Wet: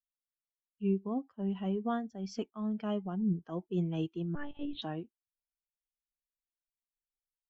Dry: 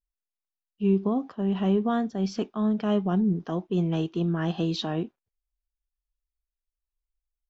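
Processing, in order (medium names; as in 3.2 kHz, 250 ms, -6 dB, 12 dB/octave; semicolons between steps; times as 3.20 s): expander on every frequency bin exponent 1.5; 4.35–4.82 s: monotone LPC vocoder at 8 kHz 290 Hz; random flutter of the level, depth 65%; trim -3 dB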